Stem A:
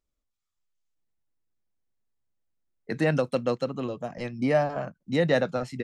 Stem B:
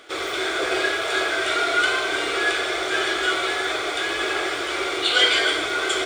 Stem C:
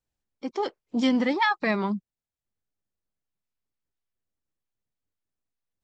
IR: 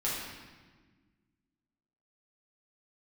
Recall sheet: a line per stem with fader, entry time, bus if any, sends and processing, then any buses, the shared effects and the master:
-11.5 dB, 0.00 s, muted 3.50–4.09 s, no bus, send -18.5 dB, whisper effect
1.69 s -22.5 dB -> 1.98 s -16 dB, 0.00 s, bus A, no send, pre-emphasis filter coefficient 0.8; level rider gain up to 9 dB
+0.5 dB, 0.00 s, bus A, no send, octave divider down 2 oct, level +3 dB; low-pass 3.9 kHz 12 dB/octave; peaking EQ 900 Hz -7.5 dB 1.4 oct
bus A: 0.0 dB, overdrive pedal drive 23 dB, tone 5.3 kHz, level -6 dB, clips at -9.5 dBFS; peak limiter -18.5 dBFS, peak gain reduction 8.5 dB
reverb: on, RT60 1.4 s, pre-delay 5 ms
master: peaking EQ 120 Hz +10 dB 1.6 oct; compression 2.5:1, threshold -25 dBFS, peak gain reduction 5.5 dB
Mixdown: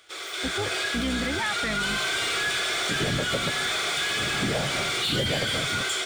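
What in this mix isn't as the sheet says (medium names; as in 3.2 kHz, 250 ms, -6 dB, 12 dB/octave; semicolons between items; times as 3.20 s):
stem A -11.5 dB -> -3.5 dB; stem B -22.5 dB -> -15.5 dB; stem C +0.5 dB -> -9.5 dB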